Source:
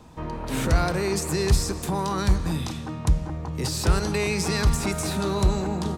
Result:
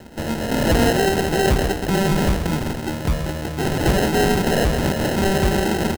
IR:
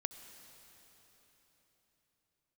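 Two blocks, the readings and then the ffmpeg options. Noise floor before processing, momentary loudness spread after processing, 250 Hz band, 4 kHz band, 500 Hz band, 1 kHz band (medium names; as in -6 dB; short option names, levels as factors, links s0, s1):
-34 dBFS, 7 LU, +7.0 dB, +5.0 dB, +8.0 dB, +7.0 dB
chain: -filter_complex "[0:a]asplit=2[s0][s1];[s1]highpass=f=720:p=1,volume=6.31,asoftclip=type=tanh:threshold=0.335[s2];[s0][s2]amix=inputs=2:normalize=0,lowpass=f=4100:p=1,volume=0.501,asplit=2[s3][s4];[s4]adelay=128.3,volume=0.355,highshelf=f=4000:g=-2.89[s5];[s3][s5]amix=inputs=2:normalize=0,acrusher=samples=38:mix=1:aa=0.000001,volume=1.41"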